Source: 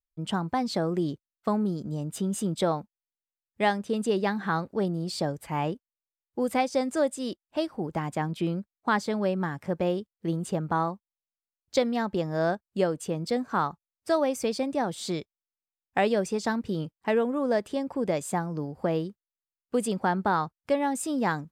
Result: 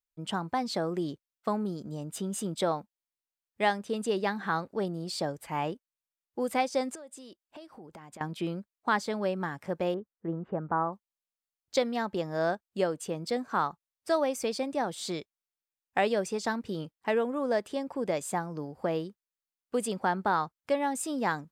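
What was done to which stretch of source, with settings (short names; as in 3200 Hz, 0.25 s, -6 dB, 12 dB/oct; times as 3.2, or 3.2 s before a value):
6.95–8.21 compressor 10:1, threshold -40 dBFS
9.94–10.93 LPF 1700 Hz 24 dB/oct
whole clip: low shelf 250 Hz -8 dB; gain -1 dB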